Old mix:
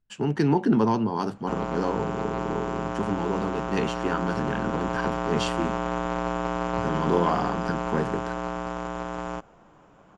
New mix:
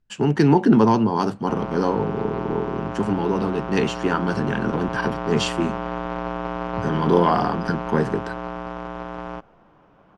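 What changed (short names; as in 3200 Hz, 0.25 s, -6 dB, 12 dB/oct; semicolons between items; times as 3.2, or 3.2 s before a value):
speech +6.0 dB; background: remove synth low-pass 7200 Hz, resonance Q 14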